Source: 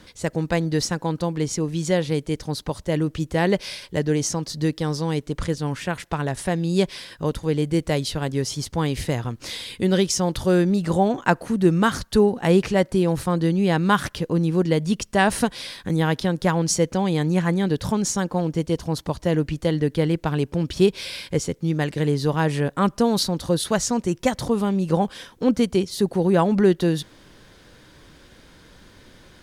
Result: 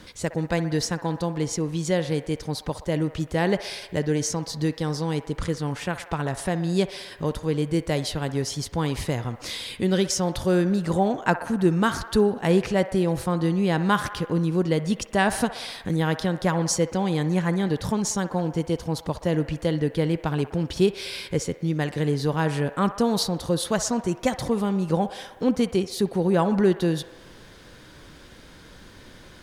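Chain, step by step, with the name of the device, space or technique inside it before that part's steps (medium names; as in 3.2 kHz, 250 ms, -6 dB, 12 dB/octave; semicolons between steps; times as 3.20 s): parallel compression (in parallel at -1 dB: compression, threshold -36 dBFS, peak gain reduction 22 dB); on the sum: feedback echo behind a band-pass 62 ms, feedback 72%, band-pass 1.1 kHz, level -12 dB; trim -3.5 dB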